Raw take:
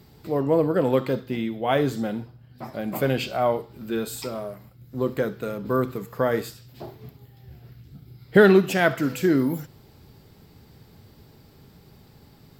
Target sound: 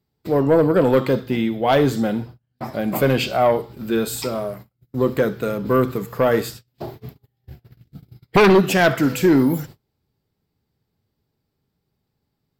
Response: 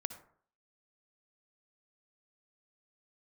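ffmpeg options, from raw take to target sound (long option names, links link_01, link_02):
-af "aeval=exprs='0.841*sin(PI/2*3.16*val(0)/0.841)':channel_layout=same,agate=range=-30dB:threshold=-29dB:ratio=16:detection=peak,volume=-7dB"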